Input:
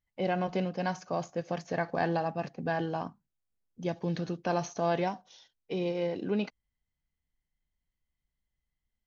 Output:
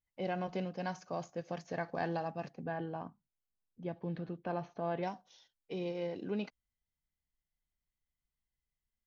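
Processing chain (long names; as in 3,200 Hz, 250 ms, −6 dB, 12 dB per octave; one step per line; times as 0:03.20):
0:02.64–0:05.03: high-frequency loss of the air 370 metres
level −6.5 dB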